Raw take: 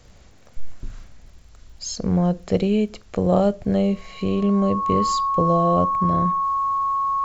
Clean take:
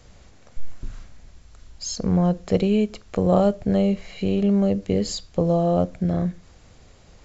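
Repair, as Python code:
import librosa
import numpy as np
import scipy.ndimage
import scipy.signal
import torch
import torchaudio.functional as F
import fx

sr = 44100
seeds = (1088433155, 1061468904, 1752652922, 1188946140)

y = fx.fix_declick_ar(x, sr, threshold=6.5)
y = fx.notch(y, sr, hz=1100.0, q=30.0)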